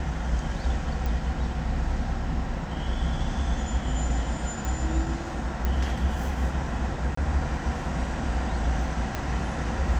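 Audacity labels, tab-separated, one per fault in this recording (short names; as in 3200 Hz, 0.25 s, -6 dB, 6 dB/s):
1.060000	1.060000	pop
4.650000	4.650000	pop
5.650000	5.650000	pop -14 dBFS
7.150000	7.170000	gap 24 ms
9.150000	9.150000	pop -14 dBFS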